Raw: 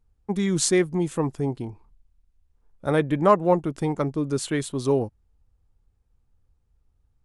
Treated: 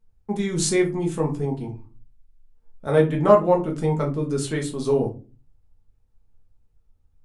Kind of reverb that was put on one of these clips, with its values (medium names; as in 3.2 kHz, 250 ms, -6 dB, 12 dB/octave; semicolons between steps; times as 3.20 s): simulated room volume 140 m³, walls furnished, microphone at 1.5 m; trim -3 dB